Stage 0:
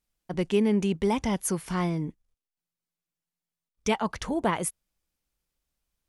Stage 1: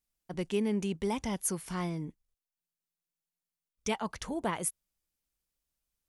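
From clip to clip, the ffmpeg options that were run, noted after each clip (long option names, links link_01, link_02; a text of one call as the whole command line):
ffmpeg -i in.wav -af "highshelf=frequency=5300:gain=7,volume=-7dB" out.wav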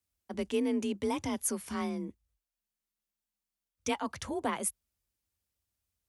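ffmpeg -i in.wav -af "afreqshift=38" out.wav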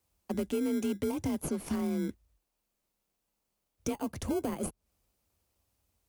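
ffmpeg -i in.wav -filter_complex "[0:a]asplit=2[link_01][link_02];[link_02]acrusher=samples=24:mix=1:aa=0.000001,volume=-5dB[link_03];[link_01][link_03]amix=inputs=2:normalize=0,alimiter=limit=-23dB:level=0:latency=1:release=252,acrossover=split=590|7700[link_04][link_05][link_06];[link_04]acompressor=threshold=-35dB:ratio=4[link_07];[link_05]acompressor=threshold=-52dB:ratio=4[link_08];[link_06]acompressor=threshold=-50dB:ratio=4[link_09];[link_07][link_08][link_09]amix=inputs=3:normalize=0,volume=6dB" out.wav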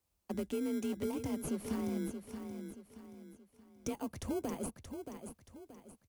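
ffmpeg -i in.wav -af "aecho=1:1:627|1254|1881|2508:0.398|0.151|0.0575|0.0218,volume=-5dB" out.wav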